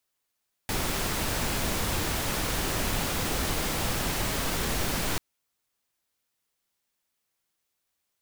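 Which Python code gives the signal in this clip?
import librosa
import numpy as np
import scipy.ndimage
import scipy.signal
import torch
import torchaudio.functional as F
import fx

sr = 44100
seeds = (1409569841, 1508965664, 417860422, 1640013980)

y = fx.noise_colour(sr, seeds[0], length_s=4.49, colour='pink', level_db=-28.5)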